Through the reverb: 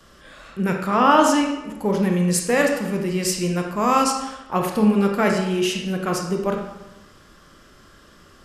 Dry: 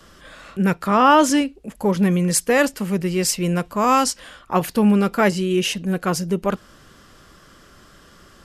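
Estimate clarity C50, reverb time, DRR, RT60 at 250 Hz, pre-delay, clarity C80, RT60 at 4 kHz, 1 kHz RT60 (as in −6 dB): 4.0 dB, 1.0 s, 1.5 dB, 1.1 s, 23 ms, 6.5 dB, 0.75 s, 0.95 s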